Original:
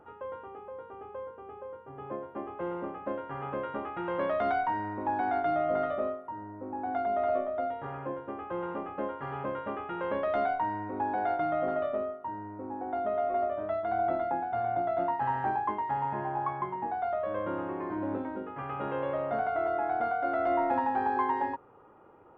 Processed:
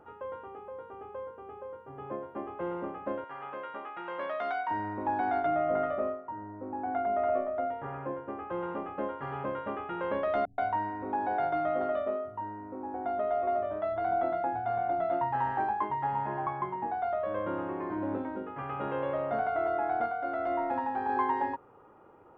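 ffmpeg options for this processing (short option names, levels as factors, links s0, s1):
-filter_complex "[0:a]asettb=1/sr,asplit=3[s0][s1][s2];[s0]atrim=end=3.244[s3];[s1]atrim=start=3.24:end=4.71,asetpts=PTS-STARTPTS,afade=t=in:d=0.004:c=qsin,afade=t=out:st=1.466:d=0.004:c=qsin,highpass=f=1000:p=1[s4];[s2]atrim=start=4.706[s5];[s3][s4]acrossfade=d=0.004:c1=hsin:c2=qsin[s6];[s6][s5]acrossfade=d=0.004:c1=qsin:c2=hsin,asettb=1/sr,asplit=3[s7][s8][s9];[s7]atrim=end=5.464[s10];[s8]atrim=start=5.46:end=8.5,asetpts=PTS-STARTPTS,afade=t=in:d=0.004:c=qsin,afade=t=out:st=3.036:d=0.004:c=qsin,lowpass=f=2900:w=0.5412,lowpass=f=2900:w=1.3066[s11];[s9]atrim=start=8.496[s12];[s10][s11]acrossfade=d=0.004:c1=hsin:c2=qsin[s13];[s13][s12]acrossfade=d=0.004:c1=qsin:c2=hsin,asettb=1/sr,asplit=3[s14][s15][s16];[s14]atrim=end=10.454[s17];[s15]atrim=start=10.45:end=16.47,asetpts=PTS-STARTPTS,afade=t=in:d=0.004:c=qsin,afade=t=out:st=6.016:d=0.004:c=qsin,acrossover=split=180[s18][s19];[s19]adelay=130[s20];[s18][s20]amix=inputs=2:normalize=0,atrim=end_sample=265482[s21];[s16]atrim=start=16.466[s22];[s17][s21]acrossfade=d=0.004:c1=hsin:c2=qsin[s23];[s23][s22]acrossfade=d=0.004:c1=qsin:c2=hsin,asplit=3[s24][s25][s26];[s24]atrim=end=20.062[s27];[s25]atrim=start=20.058:end=21.092,asetpts=PTS-STARTPTS,volume=0.668[s28];[s26]atrim=start=21.088[s29];[s27][s28]acrossfade=d=0.004:c1=hsin:c2=hsin[s30];[s30][s29]acrossfade=d=0.004:c1=hsin:c2=hsin"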